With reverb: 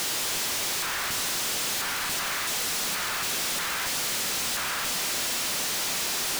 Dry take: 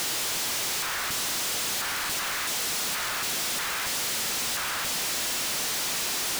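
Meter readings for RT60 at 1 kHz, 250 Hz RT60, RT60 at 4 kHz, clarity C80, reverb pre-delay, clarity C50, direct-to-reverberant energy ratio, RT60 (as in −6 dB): 2.1 s, 4.4 s, 1.4 s, 11.5 dB, 5 ms, 10.5 dB, 8.5 dB, 2.4 s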